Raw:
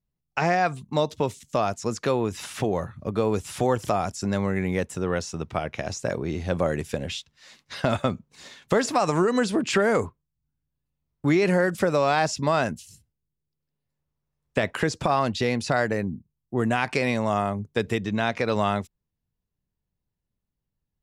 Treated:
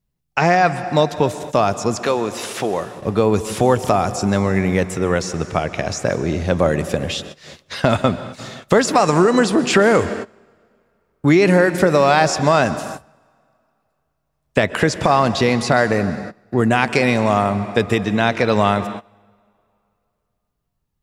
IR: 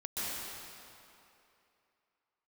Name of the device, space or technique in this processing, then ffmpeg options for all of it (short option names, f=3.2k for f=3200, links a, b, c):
keyed gated reverb: -filter_complex "[0:a]asettb=1/sr,asplit=3[a][b][c];[a]atrim=end=2.024[d];[b]atrim=start=2.02:end=3.01,asetpts=PTS-STARTPTS,afade=t=in:d=0.004:c=qsin,afade=t=out:st=0.986:d=0.004:c=qsin,highpass=f=460:p=1[e];[c]atrim=start=3.006[f];[d][e]acrossfade=d=0.004:c1=hsin:c2=qsin[g];[g][f]acrossfade=d=0.004:c1=qsin:c2=hsin,asplit=3[h][i][j];[1:a]atrim=start_sample=2205[k];[i][k]afir=irnorm=-1:irlink=0[l];[j]apad=whole_len=927019[m];[l][m]sidechaingate=range=-20dB:threshold=-49dB:ratio=16:detection=peak,volume=-15.5dB[n];[h][n]amix=inputs=2:normalize=0,volume=7dB"